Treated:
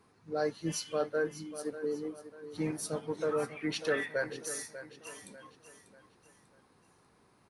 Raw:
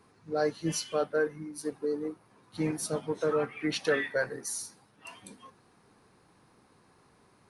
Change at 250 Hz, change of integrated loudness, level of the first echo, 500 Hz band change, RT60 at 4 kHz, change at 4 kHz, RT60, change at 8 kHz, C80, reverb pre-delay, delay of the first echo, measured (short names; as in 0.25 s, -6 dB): -3.5 dB, -3.5 dB, -13.0 dB, -3.0 dB, none, -3.5 dB, none, -3.5 dB, none, none, 0.593 s